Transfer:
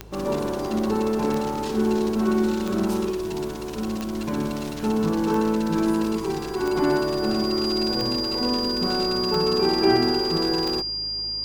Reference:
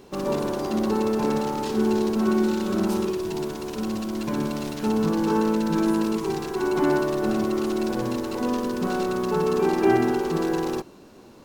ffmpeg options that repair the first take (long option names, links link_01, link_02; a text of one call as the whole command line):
ffmpeg -i in.wav -af "adeclick=threshold=4,bandreject=frequency=53:width_type=h:width=4,bandreject=frequency=106:width_type=h:width=4,bandreject=frequency=159:width_type=h:width=4,bandreject=frequency=4800:width=30" out.wav